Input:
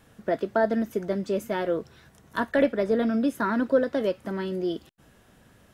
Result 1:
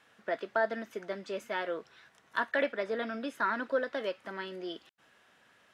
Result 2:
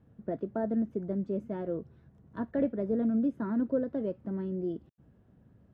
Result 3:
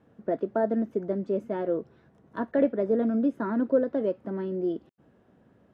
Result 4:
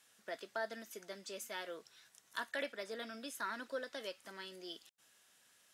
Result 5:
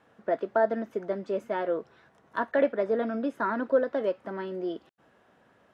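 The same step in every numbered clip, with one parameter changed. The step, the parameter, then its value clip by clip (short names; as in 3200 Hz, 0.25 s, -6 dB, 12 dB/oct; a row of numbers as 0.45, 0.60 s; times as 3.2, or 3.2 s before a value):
band-pass, frequency: 2100, 120, 320, 7300, 830 Hz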